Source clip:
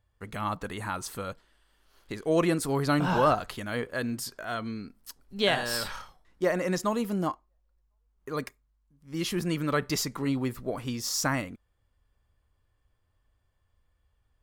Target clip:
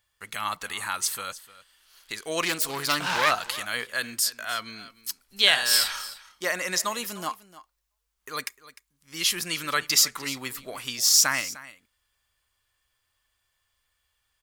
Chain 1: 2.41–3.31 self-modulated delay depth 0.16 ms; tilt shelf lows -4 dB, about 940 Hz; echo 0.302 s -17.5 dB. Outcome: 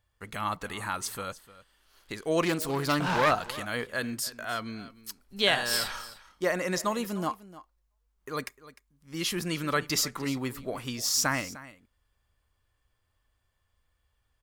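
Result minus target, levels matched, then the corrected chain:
1000 Hz band +4.0 dB
2.41–3.31 self-modulated delay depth 0.16 ms; tilt shelf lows -13 dB, about 940 Hz; echo 0.302 s -17.5 dB

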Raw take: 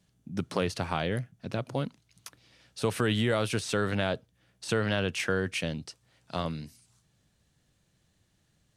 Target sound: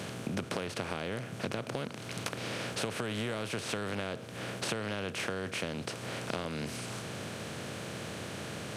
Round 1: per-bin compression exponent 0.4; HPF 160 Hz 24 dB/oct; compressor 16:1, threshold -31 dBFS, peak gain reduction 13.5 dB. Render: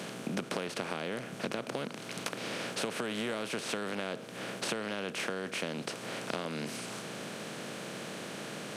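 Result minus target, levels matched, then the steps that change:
125 Hz band -5.5 dB
change: HPF 78 Hz 24 dB/oct

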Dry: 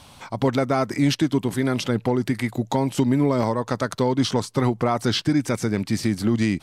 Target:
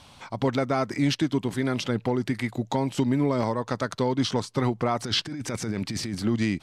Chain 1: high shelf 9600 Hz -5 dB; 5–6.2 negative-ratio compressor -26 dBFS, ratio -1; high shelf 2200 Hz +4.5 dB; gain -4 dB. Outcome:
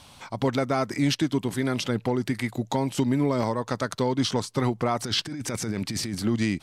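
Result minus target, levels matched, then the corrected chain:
8000 Hz band +3.0 dB
high shelf 9600 Hz -16 dB; 5–6.2 negative-ratio compressor -26 dBFS, ratio -1; high shelf 2200 Hz +4.5 dB; gain -4 dB

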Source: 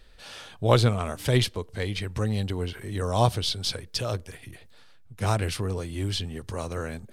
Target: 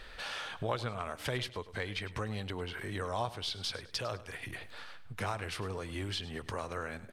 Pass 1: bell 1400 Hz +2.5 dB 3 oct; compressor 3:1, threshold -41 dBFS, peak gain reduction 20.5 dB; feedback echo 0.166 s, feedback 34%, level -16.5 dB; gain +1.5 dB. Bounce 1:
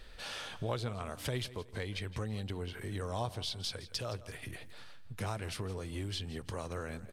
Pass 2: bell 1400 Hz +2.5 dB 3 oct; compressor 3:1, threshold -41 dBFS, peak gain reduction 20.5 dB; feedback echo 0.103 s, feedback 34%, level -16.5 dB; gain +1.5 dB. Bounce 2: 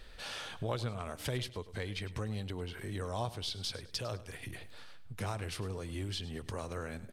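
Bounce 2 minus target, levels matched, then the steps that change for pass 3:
1000 Hz band -3.0 dB
change: bell 1400 Hz +11.5 dB 3 oct

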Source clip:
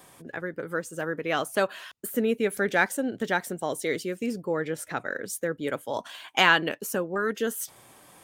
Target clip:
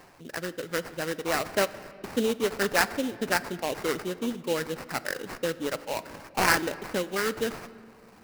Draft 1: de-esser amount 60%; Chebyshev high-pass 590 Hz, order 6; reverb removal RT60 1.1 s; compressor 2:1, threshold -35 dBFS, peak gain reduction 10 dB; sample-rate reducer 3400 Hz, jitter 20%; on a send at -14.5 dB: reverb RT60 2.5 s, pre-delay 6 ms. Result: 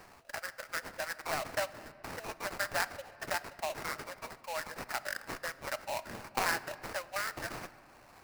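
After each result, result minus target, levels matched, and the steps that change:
compressor: peak gain reduction +10 dB; 500 Hz band -3.0 dB
remove: compressor 2:1, threshold -35 dBFS, peak gain reduction 10 dB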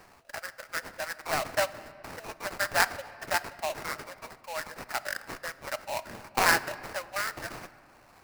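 500 Hz band -4.5 dB
remove: Chebyshev high-pass 590 Hz, order 6

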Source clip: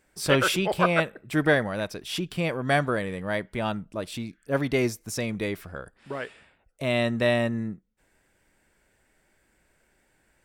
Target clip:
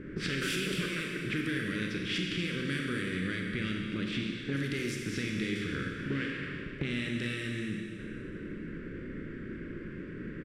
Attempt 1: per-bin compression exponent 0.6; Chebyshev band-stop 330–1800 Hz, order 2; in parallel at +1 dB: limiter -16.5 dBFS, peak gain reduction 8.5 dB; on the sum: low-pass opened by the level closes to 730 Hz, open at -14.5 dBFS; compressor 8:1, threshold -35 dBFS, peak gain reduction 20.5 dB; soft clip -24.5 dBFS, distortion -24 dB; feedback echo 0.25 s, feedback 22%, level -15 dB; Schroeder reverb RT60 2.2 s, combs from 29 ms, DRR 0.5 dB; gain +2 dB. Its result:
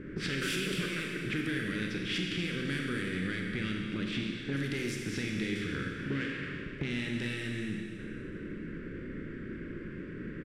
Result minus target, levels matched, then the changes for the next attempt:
soft clip: distortion +17 dB
change: soft clip -15 dBFS, distortion -41 dB

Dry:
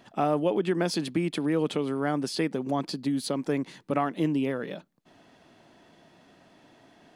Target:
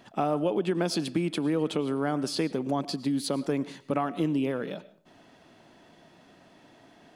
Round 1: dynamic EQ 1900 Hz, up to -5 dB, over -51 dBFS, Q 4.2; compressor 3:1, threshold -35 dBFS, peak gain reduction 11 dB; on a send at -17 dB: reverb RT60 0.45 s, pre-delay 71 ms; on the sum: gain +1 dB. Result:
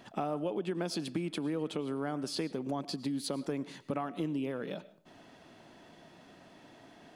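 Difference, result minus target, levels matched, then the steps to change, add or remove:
compressor: peak gain reduction +7.5 dB
change: compressor 3:1, threshold -23.5 dBFS, peak gain reduction 3.5 dB

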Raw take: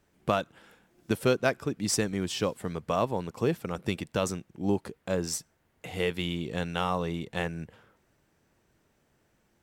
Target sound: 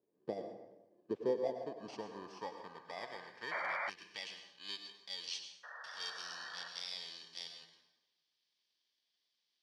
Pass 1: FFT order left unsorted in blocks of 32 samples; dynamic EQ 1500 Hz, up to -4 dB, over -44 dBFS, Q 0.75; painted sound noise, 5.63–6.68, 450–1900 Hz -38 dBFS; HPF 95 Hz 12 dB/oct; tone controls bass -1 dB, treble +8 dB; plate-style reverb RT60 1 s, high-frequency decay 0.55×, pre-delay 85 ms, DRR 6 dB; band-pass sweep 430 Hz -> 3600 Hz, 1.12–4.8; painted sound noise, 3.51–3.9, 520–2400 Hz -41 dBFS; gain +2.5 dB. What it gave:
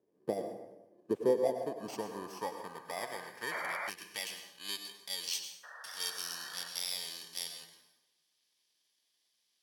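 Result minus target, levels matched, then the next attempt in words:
8000 Hz band +8.0 dB
FFT order left unsorted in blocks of 32 samples; dynamic EQ 1500 Hz, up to -4 dB, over -44 dBFS, Q 0.75; ladder low-pass 5900 Hz, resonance 25%; painted sound noise, 5.63–6.68, 450–1900 Hz -38 dBFS; HPF 95 Hz 12 dB/oct; tone controls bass -1 dB, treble +8 dB; plate-style reverb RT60 1 s, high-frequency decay 0.55×, pre-delay 85 ms, DRR 6 dB; band-pass sweep 430 Hz -> 3600 Hz, 1.12–4.8; painted sound noise, 3.51–3.9, 520–2400 Hz -41 dBFS; gain +2.5 dB

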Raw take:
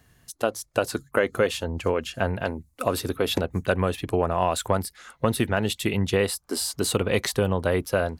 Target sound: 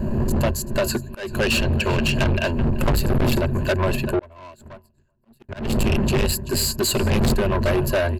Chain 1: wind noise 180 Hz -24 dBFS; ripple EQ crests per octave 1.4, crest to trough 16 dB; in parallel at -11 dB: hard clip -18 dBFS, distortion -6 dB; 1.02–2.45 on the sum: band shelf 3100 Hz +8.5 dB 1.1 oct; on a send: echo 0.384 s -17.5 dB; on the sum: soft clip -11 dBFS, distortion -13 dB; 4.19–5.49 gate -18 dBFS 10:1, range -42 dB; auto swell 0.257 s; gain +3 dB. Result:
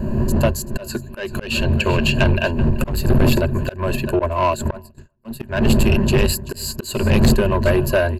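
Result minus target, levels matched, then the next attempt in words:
soft clip: distortion -6 dB
wind noise 180 Hz -24 dBFS; ripple EQ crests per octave 1.4, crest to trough 16 dB; in parallel at -11 dB: hard clip -18 dBFS, distortion -6 dB; 1.02–2.45 on the sum: band shelf 3100 Hz +8.5 dB 1.1 oct; on a send: echo 0.384 s -17.5 dB; on the sum: soft clip -19 dBFS, distortion -7 dB; 4.19–5.49 gate -18 dBFS 10:1, range -42 dB; auto swell 0.257 s; gain +3 dB

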